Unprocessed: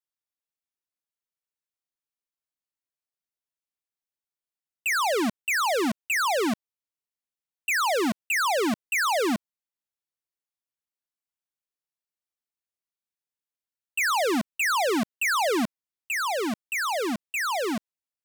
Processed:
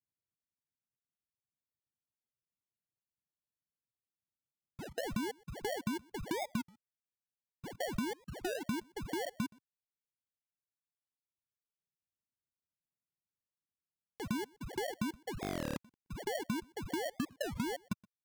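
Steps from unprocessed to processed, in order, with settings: local time reversal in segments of 0.166 s; limiter -30 dBFS, peak gain reduction 6.5 dB; band-pass 120 Hz, Q 1.3; compressor 5:1, threshold -46 dBFS, peak gain reduction 9 dB; on a send: echo 0.122 s -15 dB; on the sum: sample-and-hold 35×; reverb removal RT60 2 s; stuck buffer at 13.85/15.42, samples 1024, times 14; record warp 33 1/3 rpm, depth 250 cents; gain +12.5 dB

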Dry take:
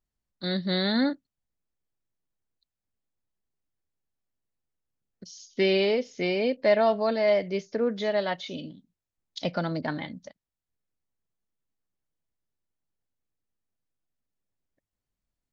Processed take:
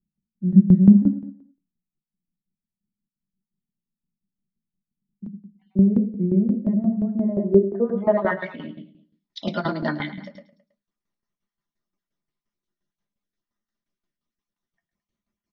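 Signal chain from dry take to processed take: random spectral dropouts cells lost 32%; low-pass sweep 190 Hz -> 6000 Hz, 7.04–9.28; feedback echo 0.108 s, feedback 36%, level -7.5 dB; reverb RT60 0.15 s, pre-delay 3 ms, DRR 3 dB; tremolo saw down 5.7 Hz, depth 75%; gain -1 dB

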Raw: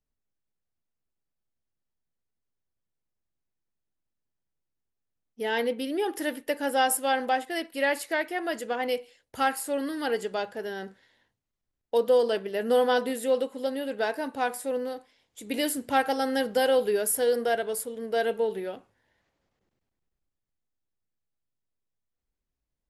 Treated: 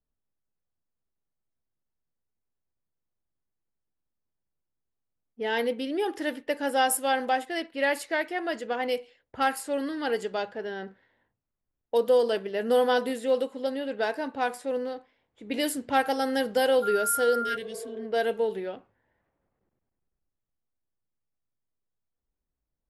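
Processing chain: low-pass opened by the level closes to 1500 Hz, open at -22.5 dBFS; 17.44–18.03 spectral repair 290–1600 Hz after; 16.82–17.55 whine 1400 Hz -28 dBFS

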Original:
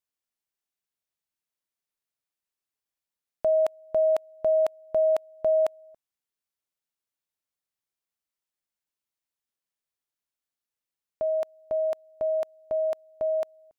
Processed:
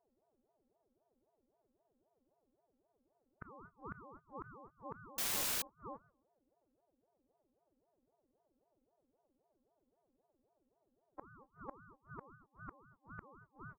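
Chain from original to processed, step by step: spectrum mirrored in octaves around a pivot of 660 Hz; doubler 20 ms -5.5 dB; robotiser 271 Hz; on a send: feedback echo 0.135 s, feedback 18%, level -21 dB; 12.35–13.22 on the sum: compressor 1.5:1, threshold -45 dBFS, peak gain reduction 4.5 dB; flipped gate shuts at -43 dBFS, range -36 dB; LPF 1400 Hz 24 dB/oct; 5.18–5.62 requantised 8-bit, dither triangular; ring modulator with a swept carrier 470 Hz, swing 50%, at 3.8 Hz; gain +14.5 dB

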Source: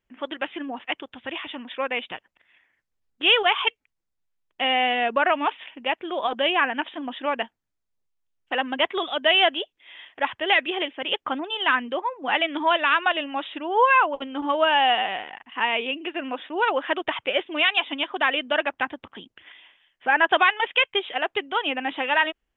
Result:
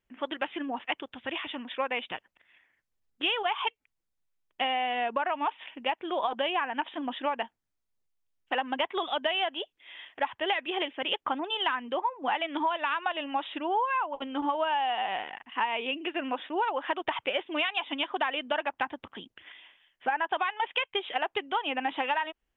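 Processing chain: dynamic EQ 900 Hz, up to +8 dB, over -37 dBFS, Q 2.4; compressor 12:1, threshold -23 dBFS, peak gain reduction 15 dB; gain -2 dB

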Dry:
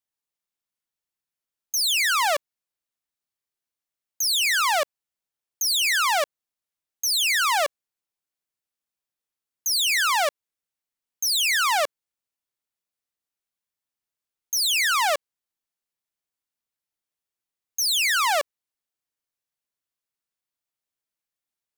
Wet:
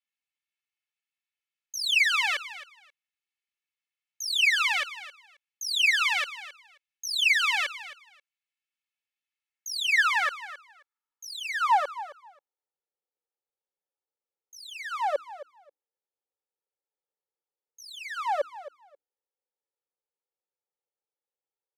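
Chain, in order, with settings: high shelf 6900 Hz +5 dB; notches 60/120/180/240/300 Hz; comb 2.3 ms, depth 98%; in parallel at +2 dB: limiter -15 dBFS, peak gain reduction 8 dB; on the sum: band-pass sweep 2400 Hz -> 560 Hz, 9.34–12.89; on a send: feedback echo 0.267 s, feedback 17%, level -15 dB; on the sum: gain -4.5 dB

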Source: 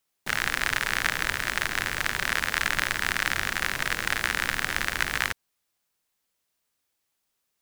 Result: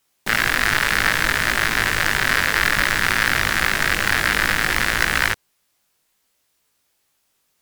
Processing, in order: chorus 0.6 Hz, delay 18 ms, depth 2.1 ms; sine folder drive 7 dB, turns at -8 dBFS; gain +2.5 dB

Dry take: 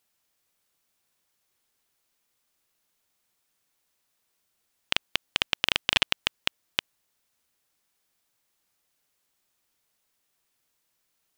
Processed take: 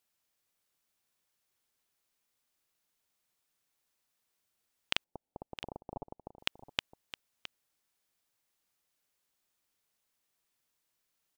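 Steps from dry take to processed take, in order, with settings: 5.04–6.39 elliptic low-pass 860 Hz, stop band 50 dB; on a send: echo 0.664 s -13 dB; on the sum: gain -6 dB

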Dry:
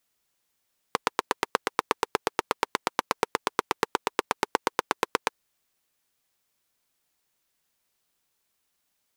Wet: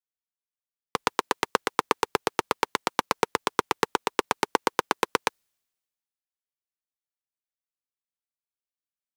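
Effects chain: three-band expander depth 70%; gain +2 dB

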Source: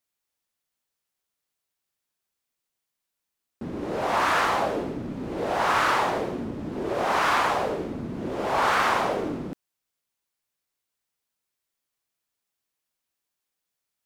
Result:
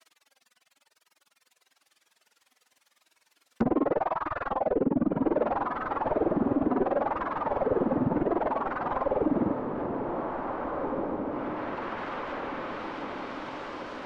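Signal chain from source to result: overdrive pedal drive 34 dB, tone 3200 Hz, clips at -10 dBFS; reverb removal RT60 1.8 s; grains 41 ms, grains 20/s, spray 32 ms, pitch spread up and down by 0 st; flange 0.96 Hz, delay 3 ms, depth 1.1 ms, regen +59%; on a send: diffused feedback echo 1.876 s, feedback 54%, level -10 dB; on the sum: limiter -25 dBFS, peak gain reduction 9 dB; treble ducked by the level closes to 840 Hz, closed at -35 dBFS; gain +8.5 dB

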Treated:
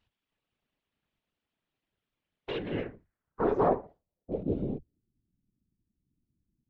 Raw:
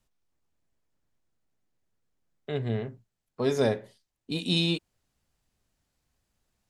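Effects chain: minimum comb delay 4.6 ms; low-pass sweep 3100 Hz -> 170 Hz, 2.58–5.23; whisperiser

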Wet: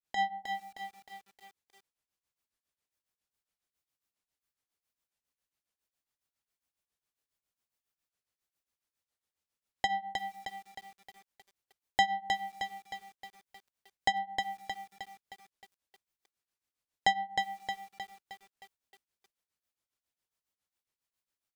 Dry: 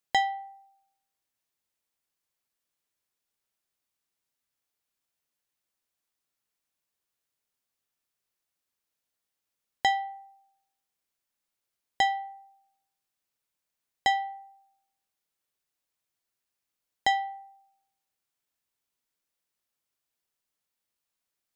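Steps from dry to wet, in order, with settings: octaver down 2 oct, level -3 dB; grains 0.176 s, grains 7.3/s, spray 16 ms, pitch spread up and down by 0 st; lo-fi delay 0.311 s, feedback 55%, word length 9-bit, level -5 dB; gain -1 dB

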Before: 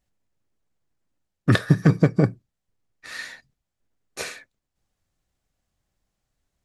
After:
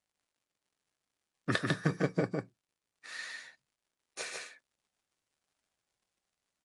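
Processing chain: HPF 450 Hz 6 dB/oct; crackle 87/s -57 dBFS; echo 0.149 s -3 dB; gain -7.5 dB; MP3 48 kbps 24000 Hz

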